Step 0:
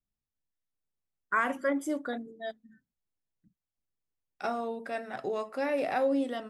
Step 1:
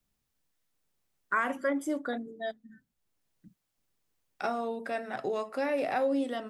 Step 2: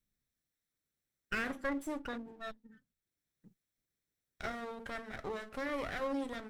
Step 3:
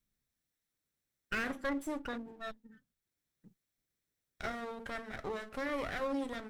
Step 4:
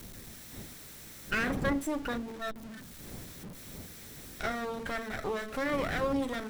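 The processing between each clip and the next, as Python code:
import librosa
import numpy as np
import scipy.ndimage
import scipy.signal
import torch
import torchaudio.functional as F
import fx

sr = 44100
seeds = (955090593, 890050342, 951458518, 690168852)

y1 = fx.band_squash(x, sr, depth_pct=40)
y2 = fx.lower_of_two(y1, sr, delay_ms=0.52)
y2 = y2 * librosa.db_to_amplitude(-5.5)
y3 = np.clip(10.0 ** (29.0 / 20.0) * y2, -1.0, 1.0) / 10.0 ** (29.0 / 20.0)
y3 = y3 * librosa.db_to_amplitude(1.0)
y4 = y3 + 0.5 * 10.0 ** (-45.5 / 20.0) * np.sign(y3)
y4 = fx.dmg_wind(y4, sr, seeds[0], corner_hz=270.0, level_db=-49.0)
y4 = y4 * librosa.db_to_amplitude(4.0)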